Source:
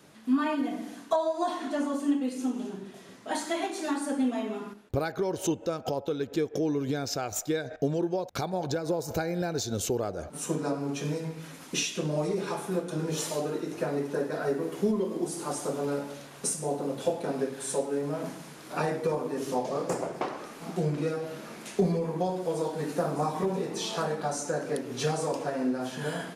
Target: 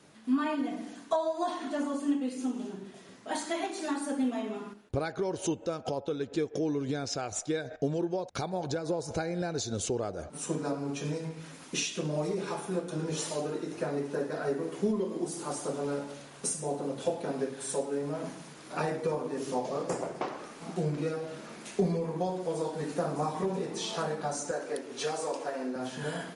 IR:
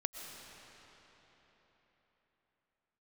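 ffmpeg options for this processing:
-filter_complex "[0:a]asettb=1/sr,asplit=3[a][b][c];[a]atrim=end=24.514[d];[b]atrim=start=24.51:end=25.76,asetpts=PTS-STARTPTS,afade=t=in:d=0.004:c=qsin,afade=t=out:st=1.246:d=0.004:c=qsin,highpass=330[e];[c]atrim=start=25.756[f];[d][e]acrossfade=d=0.004:c1=hsin:c2=qsin[g];[g][f]acrossfade=d=0.004:c1=qsin:c2=hsin,volume=-2dB" -ar 44100 -c:a libmp3lame -b:a 48k

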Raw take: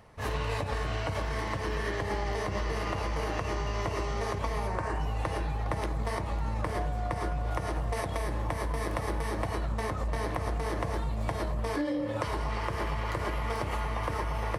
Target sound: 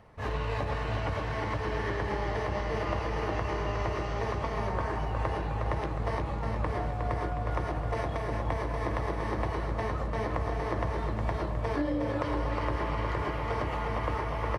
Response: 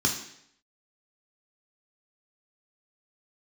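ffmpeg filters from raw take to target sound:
-filter_complex "[0:a]acrossover=split=7400[a][b];[b]acompressor=threshold=-60dB:ratio=4:attack=1:release=60[c];[a][c]amix=inputs=2:normalize=0,highshelf=f=4.6k:g=-11.5,asplit=2[d][e];[e]aecho=0:1:362|724|1086|1448|1810|2172|2534:0.562|0.292|0.152|0.0791|0.0411|0.0214|0.0111[f];[d][f]amix=inputs=2:normalize=0"

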